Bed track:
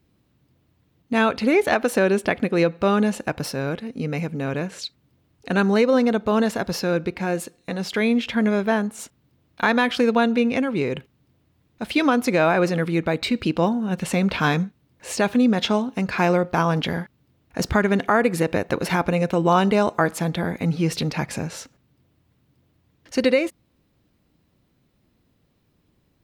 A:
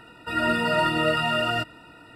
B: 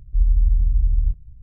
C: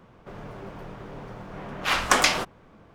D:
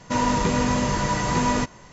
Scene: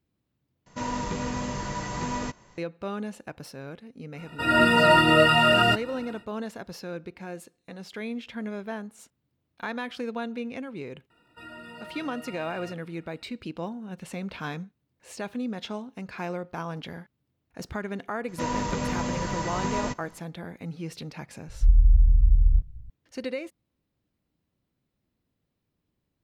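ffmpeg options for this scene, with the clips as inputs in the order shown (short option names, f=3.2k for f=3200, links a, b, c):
-filter_complex "[4:a]asplit=2[a][b];[1:a]asplit=2[c][d];[0:a]volume=-14dB[e];[c]dynaudnorm=f=160:g=5:m=5dB[f];[d]acompressor=threshold=-24dB:ratio=6:attack=3.2:release=140:knee=1:detection=peak[g];[e]asplit=2[h][i];[h]atrim=end=0.664[j];[a]atrim=end=1.92,asetpts=PTS-STARTPTS,volume=-9dB[k];[i]atrim=start=2.576[l];[f]atrim=end=2.15,asetpts=PTS-STARTPTS,afade=t=in:d=0.1,afade=t=out:st=2.05:d=0.1,adelay=4120[m];[g]atrim=end=2.15,asetpts=PTS-STARTPTS,volume=-15.5dB,afade=t=in:d=0.004:c=hsin,afade=t=out:st=2.146:d=0.004:c=hsin,adelay=11100[n];[b]atrim=end=1.92,asetpts=PTS-STARTPTS,volume=-7.5dB,afade=t=in:d=0.004:c=hsin,afade=t=out:st=1.916:d=0.004:c=hsin,adelay=806148S[o];[2:a]atrim=end=1.42,asetpts=PTS-STARTPTS,volume=-0.5dB,afade=t=in:d=0.004:c=hsin,afade=t=out:st=1.416:d=0.004:c=hsin,adelay=947268S[p];[j][k]acrossfade=d=0.004:c1=hsin:c2=hsin[q];[q][l]acrossfade=d=0.004:c1=hsin:c2=hsin[r];[r][m][n][o][p]amix=inputs=5:normalize=0"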